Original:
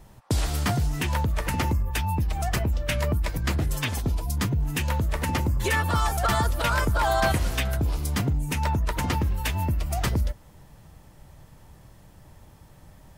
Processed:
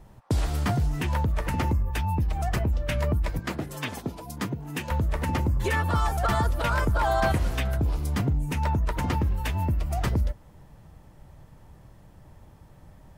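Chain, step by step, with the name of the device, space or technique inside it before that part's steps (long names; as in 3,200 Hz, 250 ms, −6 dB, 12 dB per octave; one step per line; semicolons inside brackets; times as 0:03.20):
behind a face mask (high-shelf EQ 2,300 Hz −8 dB)
0:03.39–0:04.91: high-pass filter 180 Hz 12 dB per octave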